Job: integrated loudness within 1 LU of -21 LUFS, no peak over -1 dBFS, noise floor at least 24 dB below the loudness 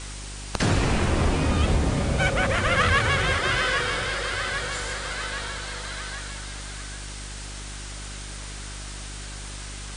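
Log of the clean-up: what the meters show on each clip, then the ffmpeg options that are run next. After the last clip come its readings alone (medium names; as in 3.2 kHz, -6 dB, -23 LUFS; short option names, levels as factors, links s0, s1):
hum 50 Hz; highest harmonic 400 Hz; hum level -35 dBFS; noise floor -36 dBFS; noise floor target -50 dBFS; loudness -25.5 LUFS; peak level -9.5 dBFS; loudness target -21.0 LUFS
-> -af "bandreject=f=50:t=h:w=4,bandreject=f=100:t=h:w=4,bandreject=f=150:t=h:w=4,bandreject=f=200:t=h:w=4,bandreject=f=250:t=h:w=4,bandreject=f=300:t=h:w=4,bandreject=f=350:t=h:w=4,bandreject=f=400:t=h:w=4"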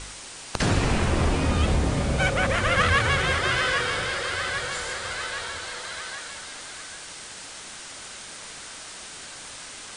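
hum not found; noise floor -41 dBFS; noise floor target -49 dBFS
-> -af "afftdn=nr=8:nf=-41"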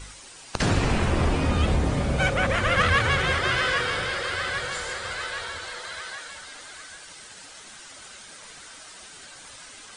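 noise floor -45 dBFS; noise floor target -49 dBFS
-> -af "afftdn=nr=6:nf=-45"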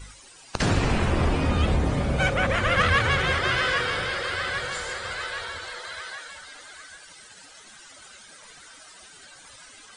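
noise floor -49 dBFS; loudness -24.5 LUFS; peak level -9.5 dBFS; loudness target -21.0 LUFS
-> -af "volume=1.5"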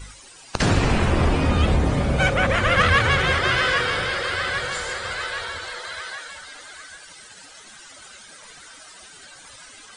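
loudness -21.0 LUFS; peak level -6.0 dBFS; noise floor -46 dBFS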